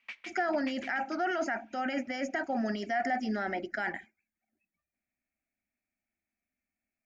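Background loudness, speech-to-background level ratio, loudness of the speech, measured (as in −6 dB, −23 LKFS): −47.0 LKFS, 14.0 dB, −33.0 LKFS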